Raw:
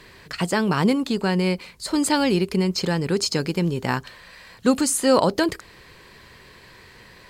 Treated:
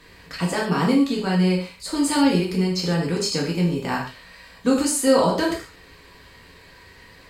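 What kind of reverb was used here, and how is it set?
non-linear reverb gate 0.17 s falling, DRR -3.5 dB; gain -5.5 dB

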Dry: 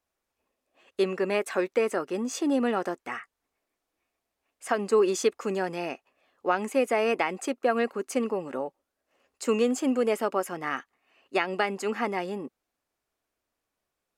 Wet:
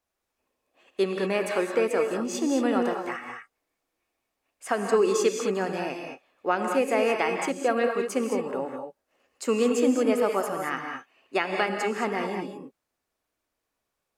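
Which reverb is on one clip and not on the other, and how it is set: non-linear reverb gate 0.24 s rising, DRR 3 dB

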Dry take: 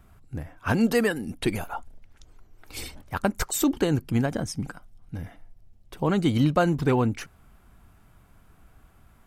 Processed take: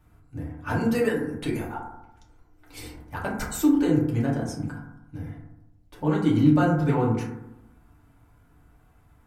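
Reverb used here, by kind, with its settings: FDN reverb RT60 0.88 s, low-frequency decay 1.2×, high-frequency decay 0.3×, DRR -5 dB; gain -8.5 dB

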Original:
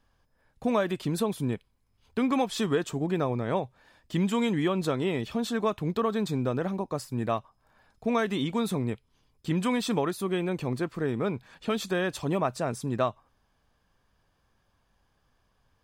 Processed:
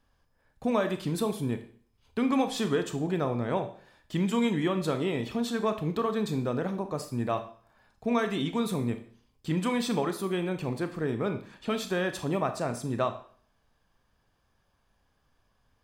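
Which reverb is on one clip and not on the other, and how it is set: Schroeder reverb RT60 0.49 s, combs from 26 ms, DRR 8 dB; gain -1.5 dB

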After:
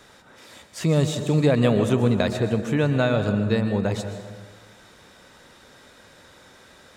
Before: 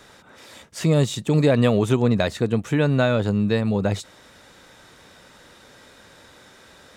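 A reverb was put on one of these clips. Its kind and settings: plate-style reverb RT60 1.6 s, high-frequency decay 0.5×, pre-delay 0.11 s, DRR 7.5 dB; gain -2 dB

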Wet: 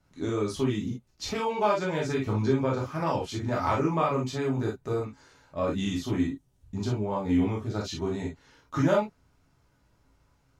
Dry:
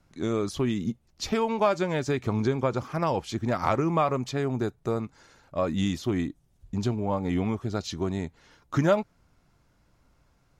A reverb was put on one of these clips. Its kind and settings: non-linear reverb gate 80 ms flat, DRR -3.5 dB; gain -6 dB

